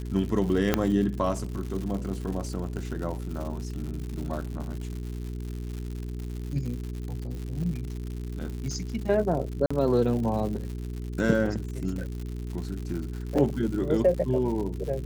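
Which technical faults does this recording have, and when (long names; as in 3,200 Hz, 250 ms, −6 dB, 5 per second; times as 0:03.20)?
surface crackle 160 per second −34 dBFS
mains hum 60 Hz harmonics 7 −34 dBFS
0:00.74: click −7 dBFS
0:09.66–0:09.71: drop-out 45 ms
0:13.38: drop-out 4.6 ms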